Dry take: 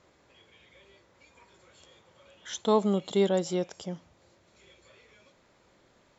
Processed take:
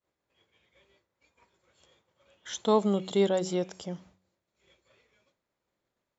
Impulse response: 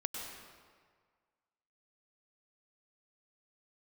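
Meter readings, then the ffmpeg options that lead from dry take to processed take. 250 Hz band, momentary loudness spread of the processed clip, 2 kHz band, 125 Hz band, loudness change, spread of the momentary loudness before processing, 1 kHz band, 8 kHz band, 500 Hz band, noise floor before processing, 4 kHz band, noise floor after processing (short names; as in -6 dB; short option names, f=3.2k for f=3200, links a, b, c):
-0.5 dB, 15 LU, -0.5 dB, -0.5 dB, 0.0 dB, 15 LU, 0.0 dB, n/a, 0.0 dB, -64 dBFS, 0.0 dB, -85 dBFS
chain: -af "agate=range=-33dB:threshold=-50dB:ratio=3:detection=peak,bandreject=f=93.62:t=h:w=4,bandreject=f=187.24:t=h:w=4,bandreject=f=280.86:t=h:w=4,bandreject=f=374.48:t=h:w=4"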